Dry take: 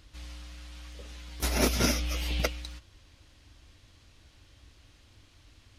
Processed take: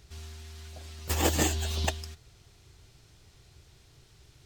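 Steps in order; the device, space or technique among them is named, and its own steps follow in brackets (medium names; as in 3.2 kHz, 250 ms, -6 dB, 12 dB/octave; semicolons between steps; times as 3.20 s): nightcore (tape speed +30%)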